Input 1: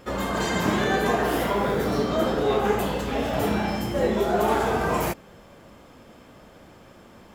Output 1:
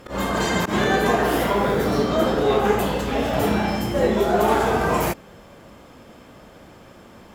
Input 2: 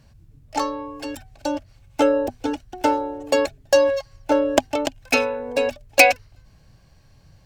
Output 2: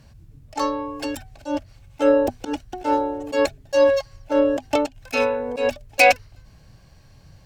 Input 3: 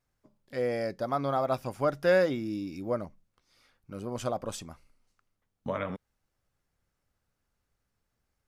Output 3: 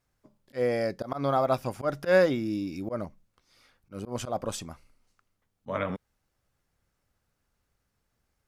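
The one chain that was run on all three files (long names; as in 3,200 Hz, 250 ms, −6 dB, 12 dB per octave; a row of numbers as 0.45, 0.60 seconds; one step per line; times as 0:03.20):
harmonic generator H 3 −20 dB, 8 −43 dB, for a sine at −1 dBFS
volume swells 102 ms
level +6.5 dB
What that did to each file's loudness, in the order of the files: +3.5, −0.5, +2.0 LU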